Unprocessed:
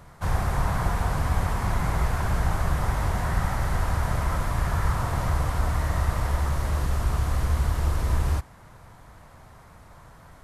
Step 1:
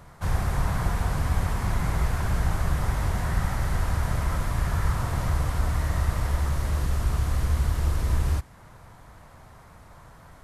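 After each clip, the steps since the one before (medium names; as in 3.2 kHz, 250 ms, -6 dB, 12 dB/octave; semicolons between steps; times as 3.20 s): dynamic bell 860 Hz, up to -4 dB, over -46 dBFS, Q 0.76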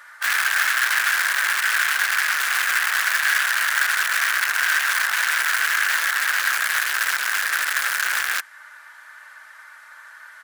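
comb 3.4 ms, depth 58%; integer overflow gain 23.5 dB; resonant high-pass 1.6 kHz, resonance Q 5.3; trim +4 dB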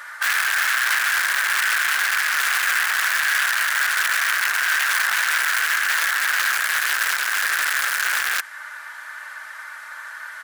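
peak limiter -18 dBFS, peak gain reduction 11.5 dB; trim +8 dB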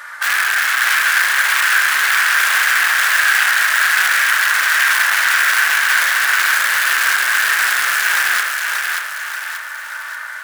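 thinning echo 583 ms, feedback 48%, high-pass 360 Hz, level -3.5 dB; reverberation, pre-delay 37 ms, DRR 4 dB; trim +3 dB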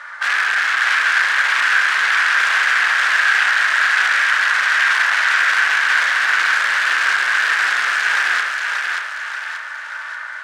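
distance through air 110 m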